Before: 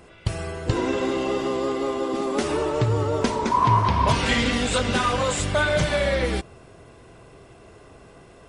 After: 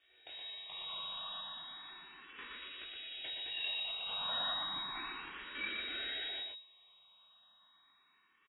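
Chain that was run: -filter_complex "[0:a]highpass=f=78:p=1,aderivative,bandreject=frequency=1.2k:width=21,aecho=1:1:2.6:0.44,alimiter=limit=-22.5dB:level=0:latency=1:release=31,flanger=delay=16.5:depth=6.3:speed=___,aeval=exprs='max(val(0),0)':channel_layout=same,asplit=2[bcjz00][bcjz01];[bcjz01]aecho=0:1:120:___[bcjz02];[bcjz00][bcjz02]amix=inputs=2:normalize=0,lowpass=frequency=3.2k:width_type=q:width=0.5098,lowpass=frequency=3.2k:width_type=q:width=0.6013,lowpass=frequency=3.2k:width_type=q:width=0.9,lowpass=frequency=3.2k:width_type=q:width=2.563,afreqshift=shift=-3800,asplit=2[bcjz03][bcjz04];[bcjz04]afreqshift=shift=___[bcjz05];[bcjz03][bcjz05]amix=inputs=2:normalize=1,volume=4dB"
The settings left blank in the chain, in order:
1.8, 0.631, 0.33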